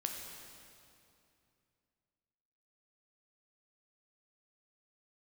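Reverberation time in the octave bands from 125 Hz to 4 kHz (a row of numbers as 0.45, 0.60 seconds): 3.2, 3.0, 2.7, 2.6, 2.3, 2.2 seconds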